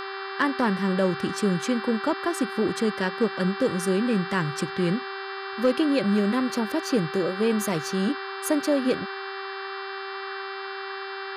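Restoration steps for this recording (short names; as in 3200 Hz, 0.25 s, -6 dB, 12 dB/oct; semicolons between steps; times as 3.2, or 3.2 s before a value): clip repair -13.5 dBFS; de-hum 389.5 Hz, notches 13; noise print and reduce 30 dB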